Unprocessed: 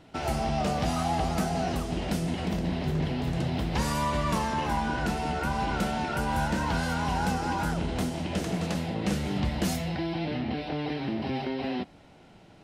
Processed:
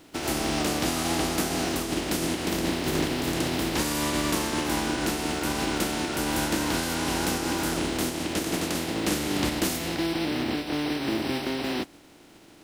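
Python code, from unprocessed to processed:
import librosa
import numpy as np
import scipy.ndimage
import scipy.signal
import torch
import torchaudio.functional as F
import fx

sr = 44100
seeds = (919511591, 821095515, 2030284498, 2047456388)

y = fx.spec_flatten(x, sr, power=0.46)
y = fx.peak_eq(y, sr, hz=310.0, db=12.5, octaves=0.68)
y = y * 10.0 ** (-1.5 / 20.0)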